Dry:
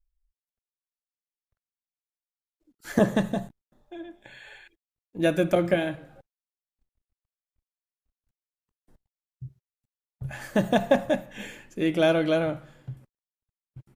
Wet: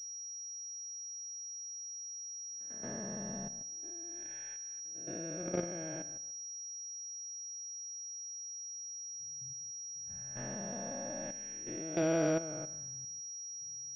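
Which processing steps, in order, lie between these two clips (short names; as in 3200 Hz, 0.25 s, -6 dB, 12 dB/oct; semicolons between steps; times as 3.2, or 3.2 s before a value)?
time blur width 0.318 s; level quantiser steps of 13 dB; pulse-width modulation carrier 5700 Hz; gain -3.5 dB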